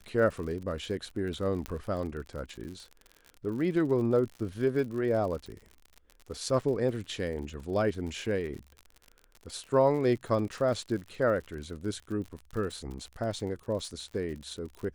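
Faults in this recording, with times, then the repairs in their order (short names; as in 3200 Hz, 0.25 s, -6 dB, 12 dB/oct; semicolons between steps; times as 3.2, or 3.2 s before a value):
crackle 58/s -38 dBFS
1.66 pop -20 dBFS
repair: de-click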